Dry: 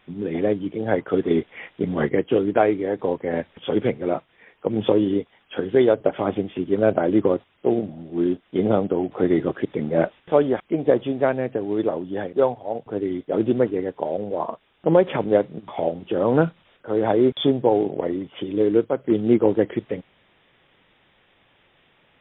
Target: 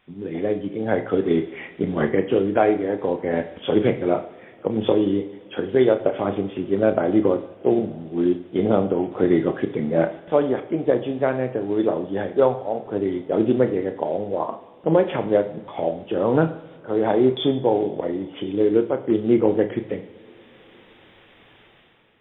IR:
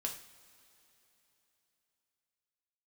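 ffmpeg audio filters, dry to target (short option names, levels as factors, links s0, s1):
-filter_complex "[0:a]dynaudnorm=f=160:g=7:m=3.76,asplit=2[s0][s1];[1:a]atrim=start_sample=2205,asetrate=30870,aresample=44100,adelay=31[s2];[s1][s2]afir=irnorm=-1:irlink=0,volume=0.299[s3];[s0][s3]amix=inputs=2:normalize=0,volume=0.596"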